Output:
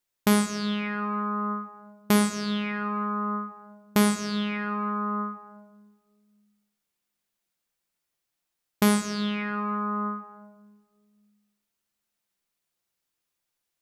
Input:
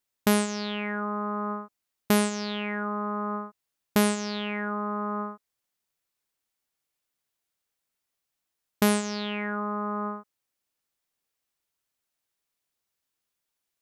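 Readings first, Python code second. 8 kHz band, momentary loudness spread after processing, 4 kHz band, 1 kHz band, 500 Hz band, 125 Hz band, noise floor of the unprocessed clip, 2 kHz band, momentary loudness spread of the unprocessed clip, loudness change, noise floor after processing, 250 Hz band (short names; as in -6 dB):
+0.5 dB, 11 LU, +0.5 dB, +2.0 dB, -2.0 dB, +3.0 dB, -84 dBFS, +0.5 dB, 10 LU, +1.5 dB, -83 dBFS, +2.5 dB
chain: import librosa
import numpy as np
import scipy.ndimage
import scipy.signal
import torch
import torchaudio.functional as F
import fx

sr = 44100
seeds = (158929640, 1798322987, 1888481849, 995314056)

y = fx.room_shoebox(x, sr, seeds[0], volume_m3=1300.0, walls='mixed', distance_m=0.86)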